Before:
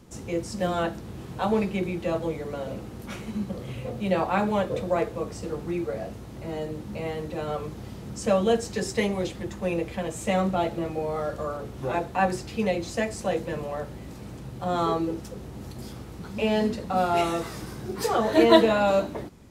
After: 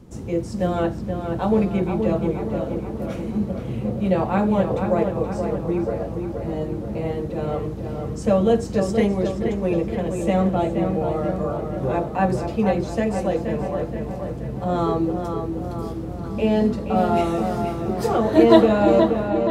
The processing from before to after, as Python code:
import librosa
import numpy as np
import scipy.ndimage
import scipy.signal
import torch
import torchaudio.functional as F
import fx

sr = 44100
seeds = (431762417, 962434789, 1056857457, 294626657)

y = fx.tilt_shelf(x, sr, db=5.5, hz=820.0)
y = fx.echo_filtered(y, sr, ms=476, feedback_pct=60, hz=3300.0, wet_db=-6)
y = y * librosa.db_to_amplitude(1.5)